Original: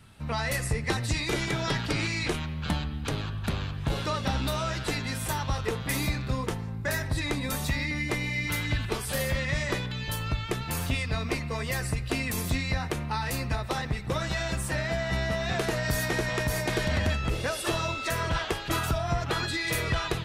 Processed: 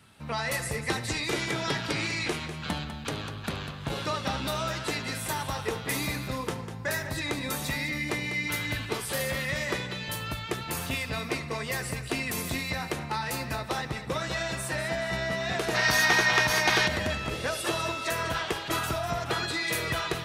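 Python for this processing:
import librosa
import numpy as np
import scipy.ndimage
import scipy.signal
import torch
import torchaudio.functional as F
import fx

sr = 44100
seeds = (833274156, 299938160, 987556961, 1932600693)

y = fx.highpass(x, sr, hz=210.0, slope=6)
y = fx.echo_multitap(y, sr, ms=(74, 198, 423), db=(-18.5, -10.5, -18.0))
y = fx.spec_box(y, sr, start_s=15.75, length_s=1.13, low_hz=700.0, high_hz=6700.0, gain_db=9)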